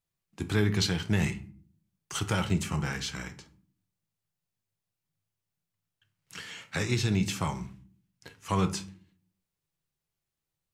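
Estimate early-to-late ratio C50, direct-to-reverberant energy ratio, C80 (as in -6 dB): 15.0 dB, 7.5 dB, 20.0 dB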